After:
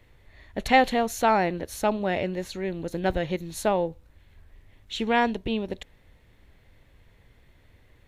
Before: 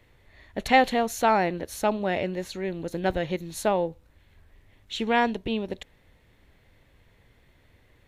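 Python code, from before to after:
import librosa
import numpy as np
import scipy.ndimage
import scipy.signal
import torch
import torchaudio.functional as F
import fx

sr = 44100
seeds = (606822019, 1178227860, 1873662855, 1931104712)

y = fx.low_shelf(x, sr, hz=82.0, db=5.5)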